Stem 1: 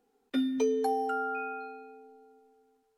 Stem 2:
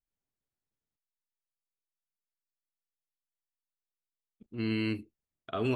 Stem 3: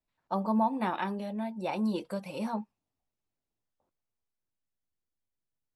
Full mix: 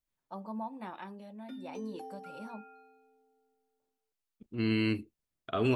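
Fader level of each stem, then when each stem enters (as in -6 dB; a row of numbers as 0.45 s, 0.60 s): -16.5 dB, +2.0 dB, -12.0 dB; 1.15 s, 0.00 s, 0.00 s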